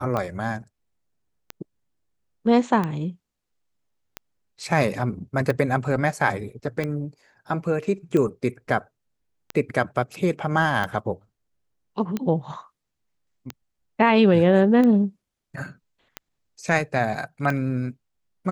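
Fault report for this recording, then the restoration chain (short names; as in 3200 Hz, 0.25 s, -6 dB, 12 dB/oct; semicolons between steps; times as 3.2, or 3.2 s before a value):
tick 45 rpm -14 dBFS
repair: de-click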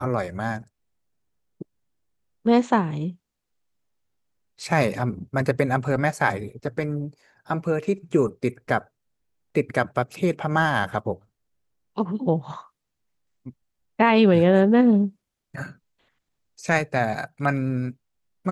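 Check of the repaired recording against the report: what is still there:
none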